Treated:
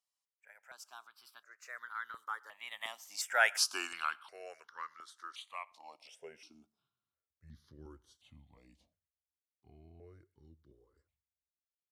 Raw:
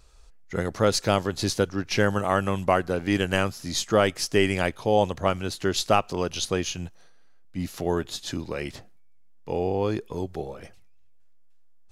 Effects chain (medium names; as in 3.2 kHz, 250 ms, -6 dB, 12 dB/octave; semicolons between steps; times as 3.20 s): Doppler pass-by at 3.59 s, 52 m/s, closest 9.4 m; high-pass sweep 1.3 kHz -> 62 Hz, 5.65–7.23 s; reverberation, pre-delay 5 ms, DRR 21.5 dB; stepped phaser 2.8 Hz 400–2500 Hz